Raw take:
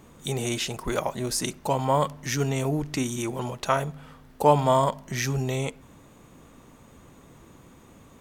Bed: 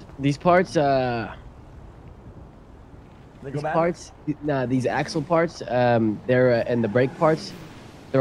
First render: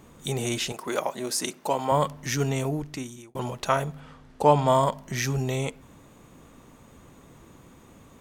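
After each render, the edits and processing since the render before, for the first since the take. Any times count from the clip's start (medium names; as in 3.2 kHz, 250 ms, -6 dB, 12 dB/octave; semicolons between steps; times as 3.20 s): 0.72–1.92 s: high-pass 250 Hz; 2.54–3.35 s: fade out; 4.00–4.68 s: low-pass 8 kHz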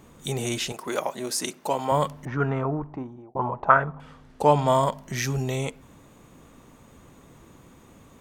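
2.25–4.00 s: touch-sensitive low-pass 680–1500 Hz up, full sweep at -21 dBFS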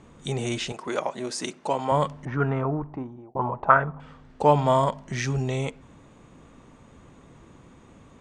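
steep low-pass 9.1 kHz 36 dB/octave; tone controls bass +1 dB, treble -5 dB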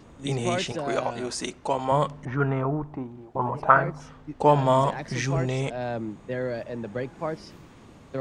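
add bed -11.5 dB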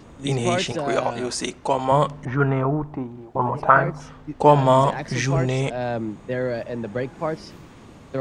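trim +4.5 dB; peak limiter -1 dBFS, peak gain reduction 3 dB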